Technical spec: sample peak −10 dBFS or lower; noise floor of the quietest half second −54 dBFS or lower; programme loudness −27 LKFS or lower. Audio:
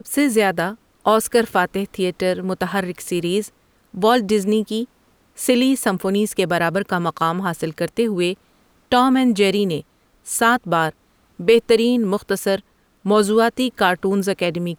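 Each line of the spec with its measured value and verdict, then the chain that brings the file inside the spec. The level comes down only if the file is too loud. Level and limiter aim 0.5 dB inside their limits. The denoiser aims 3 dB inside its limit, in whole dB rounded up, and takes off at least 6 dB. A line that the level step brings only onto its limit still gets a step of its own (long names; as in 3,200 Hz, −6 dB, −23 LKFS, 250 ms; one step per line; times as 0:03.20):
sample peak −4.0 dBFS: out of spec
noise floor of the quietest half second −58 dBFS: in spec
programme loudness −19.5 LKFS: out of spec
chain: level −8 dB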